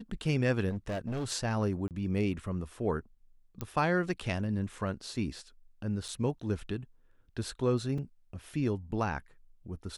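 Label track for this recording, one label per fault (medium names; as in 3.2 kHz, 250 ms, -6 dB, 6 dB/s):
0.690000	1.320000	clipped -31 dBFS
1.880000	1.910000	dropout 28 ms
3.610000	3.610000	pop -21 dBFS
6.080000	6.090000	dropout 5.8 ms
7.980000	7.980000	dropout 3.9 ms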